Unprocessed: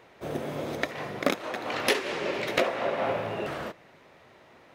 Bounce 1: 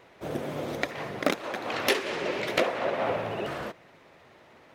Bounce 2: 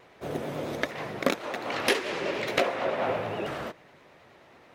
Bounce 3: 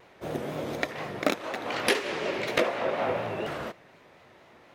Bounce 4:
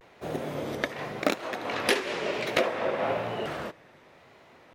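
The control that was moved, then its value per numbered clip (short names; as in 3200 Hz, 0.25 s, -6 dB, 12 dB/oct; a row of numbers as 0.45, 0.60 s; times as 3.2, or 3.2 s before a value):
vibrato, rate: 16, 9.3, 4.1, 0.97 Hz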